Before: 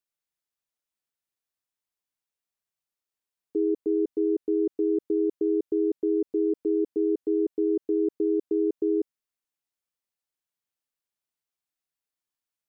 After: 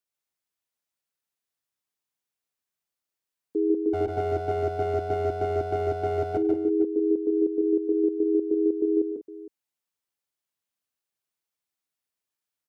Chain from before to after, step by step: 3.93–6.37 s: comb filter that takes the minimum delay 7.8 ms; high-pass 57 Hz; multi-tap echo 99/103/146/169/195/461 ms -18/-19.5/-4/-13.5/-13.5/-16.5 dB

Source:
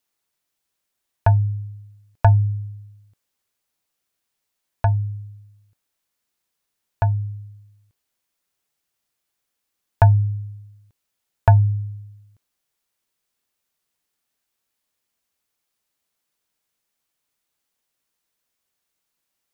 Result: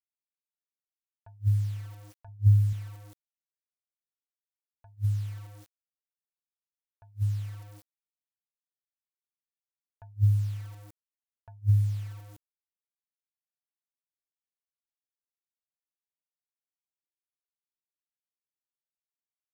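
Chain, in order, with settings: 2.28–2.73 s: bass shelf 110 Hz +7.5 dB; bit crusher 9-bit; attacks held to a fixed rise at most 430 dB/s; trim +2.5 dB

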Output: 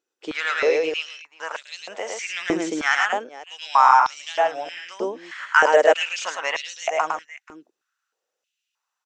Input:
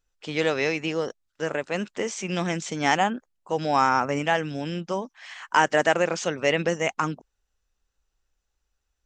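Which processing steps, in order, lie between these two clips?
wow and flutter 18 cents; multi-tap echo 107/483 ms -3/-19 dB; step-sequenced high-pass 3.2 Hz 350–3900 Hz; trim -2 dB

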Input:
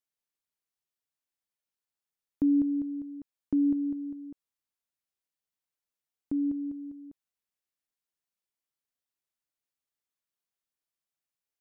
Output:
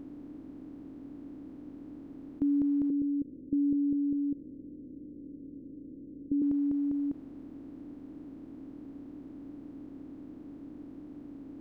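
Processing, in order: spectral levelling over time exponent 0.2; 2.90–6.42 s: elliptic low-pass 530 Hz, stop band 40 dB; trim -4 dB

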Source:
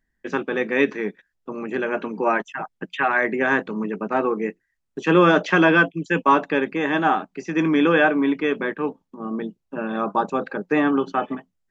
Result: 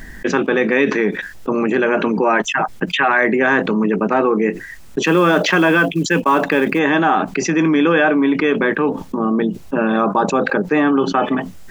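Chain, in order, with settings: 5.03–6.79 s: short-mantissa float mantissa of 4-bit; level flattener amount 70%

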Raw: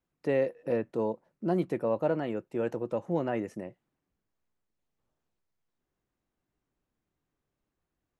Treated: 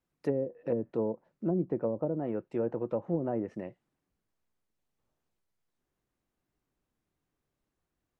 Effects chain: low-pass that closes with the level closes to 390 Hz, closed at -24 dBFS

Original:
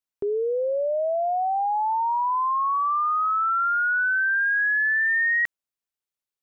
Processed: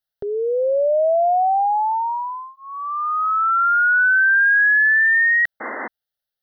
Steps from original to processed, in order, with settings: static phaser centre 1.6 kHz, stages 8; painted sound noise, 5.60–5.88 s, 210–2100 Hz -36 dBFS; trim +7.5 dB

